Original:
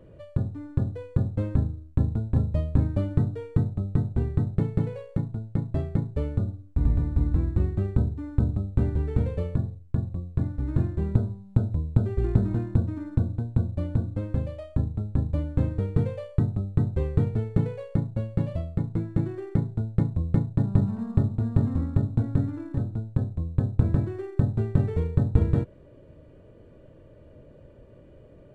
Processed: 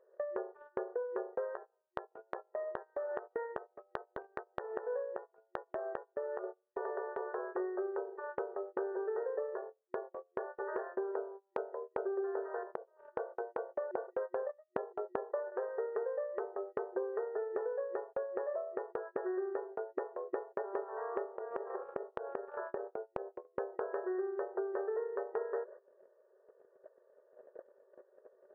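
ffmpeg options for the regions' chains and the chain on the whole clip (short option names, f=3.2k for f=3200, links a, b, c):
-filter_complex "[0:a]asettb=1/sr,asplit=3[a][b][c];[a]atrim=end=1.544[d];[b]atrim=start=1.54:end=6.44,asetpts=PTS-STARTPTS,afade=t=in:d=0.004:c=qsin,afade=t=out:st=4.896:d=0.004:c=qsin,equalizer=f=410:w=4.4:g=-9.5,acompressor=threshold=-31dB:ratio=6:attack=3.2:release=140:knee=1:detection=peak,asplit=2[e][f];[f]adelay=14,volume=-7.5dB[g];[e][g]amix=inputs=2:normalize=0,atrim=end_sample=216090[h];[c]atrim=start=6.436[i];[d][h]acrossfade=d=0.004:c1=hsin:c2=qsin[j];[j][i]acrossfade=d=0.004:c1=qsin:c2=hsin,asettb=1/sr,asplit=3[k][l][m];[k]atrim=end=12.634[n];[l]atrim=start=12.63:end=13.16,asetpts=PTS-STARTPTS,afade=t=in:d=0.004:c=qsin,afade=t=out:st=0.526:d=0.004:c=qsin,acompressor=threshold=-31dB:ratio=6:attack=3.2:release=140:knee=1:detection=peak,bandpass=f=550:t=q:w=0.96[o];[m]atrim=start=13.156[p];[n][o]acrossfade=d=0.004:c1=hsin:c2=qsin[q];[q][p]acrossfade=d=0.004:c1=qsin:c2=hsin,asettb=1/sr,asplit=3[r][s][t];[r]atrim=end=13.914[u];[s]atrim=start=13.91:end=15.52,asetpts=PTS-STARTPTS,afade=t=in:d=0.004:c=qsin,afade=t=out:st=1.606:d=0.004:c=qsin,agate=range=-30dB:threshold=-32dB:ratio=16:release=100:detection=peak,highpass=280,acontrast=29[v];[t]atrim=start=15.516[w];[u][v]acrossfade=d=0.004:c1=hsin:c2=qsin[x];[x][w]acrossfade=d=0.004:c1=qsin:c2=hsin,asettb=1/sr,asplit=3[y][z][aa];[y]atrim=end=21.354[ab];[z]atrim=start=21.35:end=23.45,asetpts=PTS-STARTPTS,afade=t=in:d=0.004:c=qsin,afade=t=out:st=2.096:d=0.004:c=qsin,acompressor=threshold=-31dB:ratio=6:attack=3.2:release=140:knee=1:detection=peak,tiltshelf=f=1.3k:g=3.5[ac];[aa]atrim=start=23.446[ad];[ab][ac]acrossfade=d=0.004:c1=hsin:c2=qsin[ae];[ae][ad]acrossfade=d=0.004:c1=qsin:c2=hsin,afftfilt=real='re*between(b*sr/4096,360,1900)':imag='im*between(b*sr/4096,360,1900)':win_size=4096:overlap=0.75,agate=range=-25dB:threshold=-51dB:ratio=16:detection=peak,acompressor=threshold=-50dB:ratio=5,volume=14dB"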